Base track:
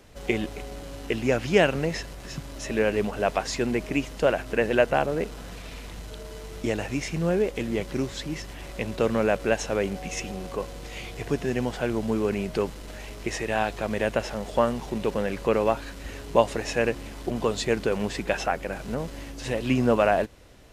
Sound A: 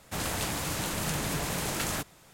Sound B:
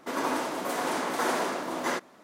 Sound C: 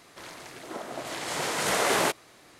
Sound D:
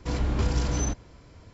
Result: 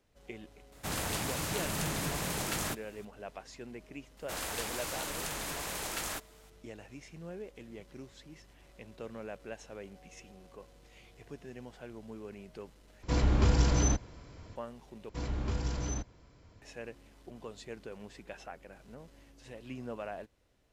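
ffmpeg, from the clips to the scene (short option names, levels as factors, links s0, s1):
-filter_complex "[1:a]asplit=2[s0][s1];[4:a]asplit=2[s2][s3];[0:a]volume=0.1[s4];[s1]equalizer=f=140:t=o:w=2:g=-11[s5];[s4]asplit=3[s6][s7][s8];[s6]atrim=end=13.034[s9];[s2]atrim=end=1.53[s10];[s7]atrim=start=14.556:end=15.094[s11];[s3]atrim=end=1.53,asetpts=PTS-STARTPTS,volume=0.376[s12];[s8]atrim=start=16.616[s13];[s0]atrim=end=2.33,asetpts=PTS-STARTPTS,volume=0.708,afade=t=in:d=0.004:c=hsin,afade=t=out:st=2.326:d=0.004:c=hsin,adelay=720[s14];[s5]atrim=end=2.33,asetpts=PTS-STARTPTS,volume=0.596,afade=t=in:d=0.004:c=hsin,afade=t=out:st=2.326:d=0.004:c=hsin,adelay=183897S[s15];[s9][s10]acrossfade=d=0.004:c1=hsin:c2=hsin[s16];[s16][s11]acrossfade=d=0.004:c1=hsin:c2=hsin[s17];[s17][s12]acrossfade=d=0.004:c1=hsin:c2=hsin[s18];[s18][s13]acrossfade=d=0.004:c1=hsin:c2=hsin[s19];[s19][s14][s15]amix=inputs=3:normalize=0"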